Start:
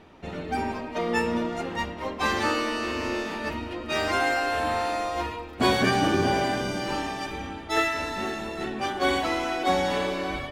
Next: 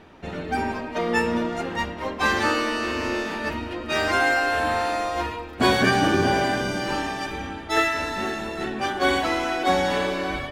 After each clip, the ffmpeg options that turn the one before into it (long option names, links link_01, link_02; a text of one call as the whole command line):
ffmpeg -i in.wav -af "equalizer=frequency=1600:width_type=o:width=0.25:gain=4.5,volume=2.5dB" out.wav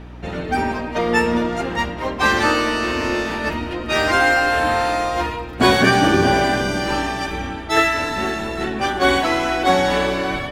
ffmpeg -i in.wav -af "aeval=exprs='val(0)+0.00891*(sin(2*PI*60*n/s)+sin(2*PI*2*60*n/s)/2+sin(2*PI*3*60*n/s)/3+sin(2*PI*4*60*n/s)/4+sin(2*PI*5*60*n/s)/5)':channel_layout=same,volume=5dB" out.wav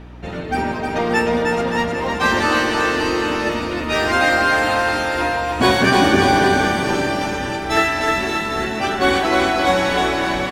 ffmpeg -i in.wav -af "aecho=1:1:310|573.5|797.5|987.9|1150:0.631|0.398|0.251|0.158|0.1,volume=-1dB" out.wav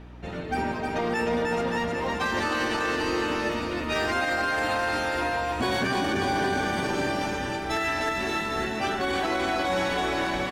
ffmpeg -i in.wav -af "alimiter=limit=-11dB:level=0:latency=1:release=34,volume=-6.5dB" out.wav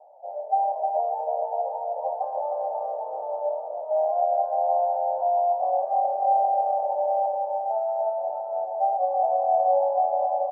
ffmpeg -i in.wav -af "asuperpass=centerf=680:order=8:qfactor=2.4,volume=9dB" out.wav